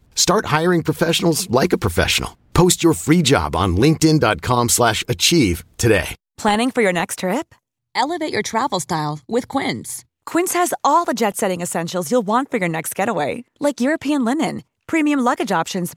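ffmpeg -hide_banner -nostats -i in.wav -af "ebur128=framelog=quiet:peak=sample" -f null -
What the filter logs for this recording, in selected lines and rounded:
Integrated loudness:
  I:         -18.2 LUFS
  Threshold: -28.3 LUFS
Loudness range:
  LRA:         5.2 LU
  Threshold: -38.4 LUFS
  LRA low:   -21.1 LUFS
  LRA high:  -15.8 LUFS
Sample peak:
  Peak:       -1.7 dBFS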